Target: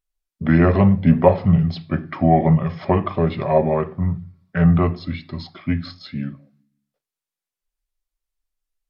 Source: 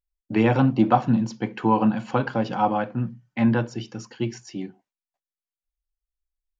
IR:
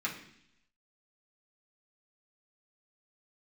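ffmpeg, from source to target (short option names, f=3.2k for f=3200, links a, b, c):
-filter_complex "[0:a]asetrate=32667,aresample=44100,asplit=2[a][b];[1:a]atrim=start_sample=2205,adelay=38[c];[b][c]afir=irnorm=-1:irlink=0,volume=-25dB[d];[a][d]amix=inputs=2:normalize=0,volume=4.5dB"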